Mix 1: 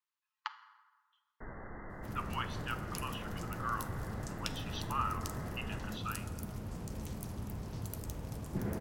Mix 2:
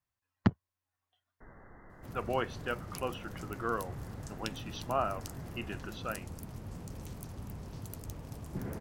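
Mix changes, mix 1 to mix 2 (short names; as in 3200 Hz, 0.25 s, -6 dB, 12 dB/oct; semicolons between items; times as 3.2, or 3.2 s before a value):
speech: remove rippled Chebyshev high-pass 850 Hz, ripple 6 dB; first sound -7.0 dB; reverb: off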